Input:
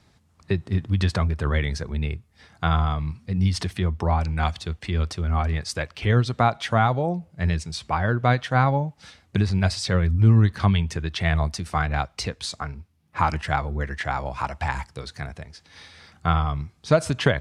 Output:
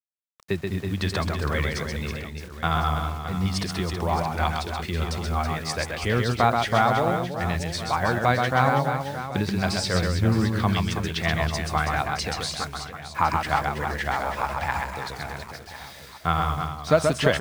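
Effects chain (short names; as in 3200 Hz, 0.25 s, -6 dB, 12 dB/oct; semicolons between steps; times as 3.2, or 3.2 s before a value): bell 100 Hz -8 dB 1.5 oct; bit-crush 8-bit; reverse bouncing-ball echo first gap 0.13 s, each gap 1.5×, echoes 5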